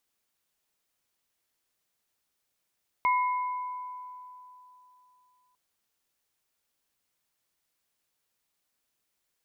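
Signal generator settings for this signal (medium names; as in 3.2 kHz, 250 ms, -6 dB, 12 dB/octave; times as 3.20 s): sine partials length 2.50 s, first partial 999 Hz, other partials 2.16 kHz, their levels -7 dB, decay 3.16 s, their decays 1.39 s, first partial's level -21 dB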